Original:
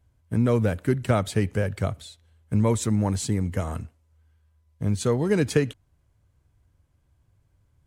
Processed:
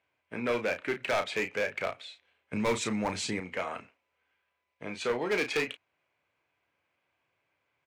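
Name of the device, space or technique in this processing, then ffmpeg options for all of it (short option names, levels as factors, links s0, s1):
megaphone: -filter_complex "[0:a]highpass=520,lowpass=3600,equalizer=f=2400:t=o:w=0.5:g=11.5,asoftclip=type=hard:threshold=0.0596,asplit=2[s0][s1];[s1]adelay=33,volume=0.398[s2];[s0][s2]amix=inputs=2:normalize=0,asettb=1/sr,asplit=3[s3][s4][s5];[s3]atrim=end=2.534[s6];[s4]atrim=start=2.53:end=3.4,asetpts=PTS-STARTPTS,afade=t=in:d=0.004:c=qsin,afade=t=out:st=0.866:d=0.004:c=qsin,bass=f=250:g=10,treble=f=4000:g=8[s7];[s5]atrim=start=3.396[s8];[s6][s7]acrossfade=d=0.004:c1=hsin:c2=qsin[s9];[s9][s8]acrossfade=d=0.004:c1=qsin:c2=hsin"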